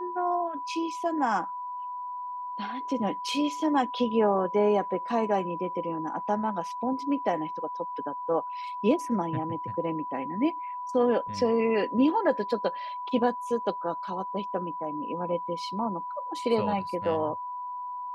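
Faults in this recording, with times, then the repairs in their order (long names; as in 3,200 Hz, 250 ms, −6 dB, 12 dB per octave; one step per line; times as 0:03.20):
whistle 990 Hz −33 dBFS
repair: notch filter 990 Hz, Q 30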